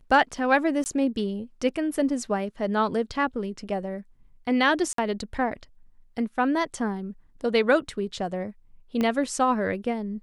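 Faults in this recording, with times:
0.84–0.86 s: dropout 19 ms
4.93–4.98 s: dropout 53 ms
9.01 s: pop -14 dBFS

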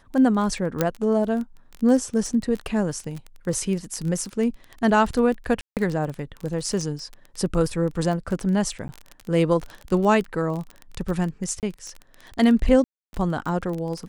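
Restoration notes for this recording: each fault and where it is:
crackle 20 per s -27 dBFS
0.81 s: pop -6 dBFS
5.61–5.77 s: dropout 158 ms
8.88–8.89 s: dropout 10 ms
11.60–11.63 s: dropout 28 ms
12.84–13.13 s: dropout 291 ms

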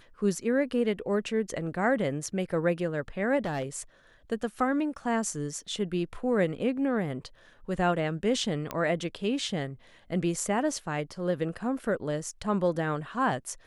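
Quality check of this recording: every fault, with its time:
3.45–3.80 s: clipped -27 dBFS
8.71 s: pop -17 dBFS

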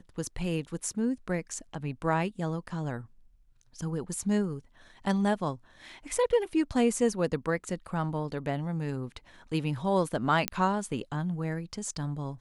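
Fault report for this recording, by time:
10.48 s: pop -9 dBFS

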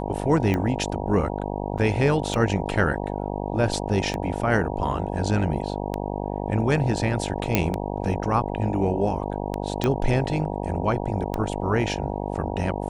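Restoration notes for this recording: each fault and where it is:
buzz 50 Hz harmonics 19 -29 dBFS
tick 33 1/3 rpm -13 dBFS
1.78–1.79 s: dropout 5.4 ms
7.55 s: pop -4 dBFS
9.84 s: pop -10 dBFS

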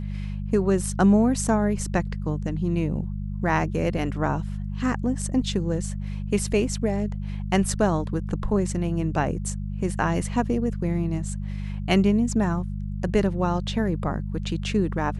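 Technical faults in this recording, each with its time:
hum 50 Hz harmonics 4 -30 dBFS

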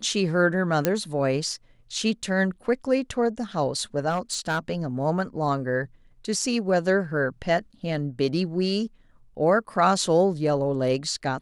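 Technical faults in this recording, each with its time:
0.85 s: pop -6 dBFS
4.09–4.59 s: clipped -20 dBFS

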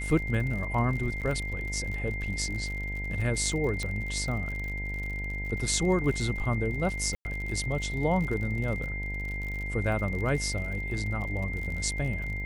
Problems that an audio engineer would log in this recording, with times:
buzz 50 Hz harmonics 19 -35 dBFS
crackle 50 per s -35 dBFS
whine 2.1 kHz -35 dBFS
1.21–1.22 s: dropout 7.2 ms
3.83 s: pop -20 dBFS
7.15–7.25 s: dropout 100 ms

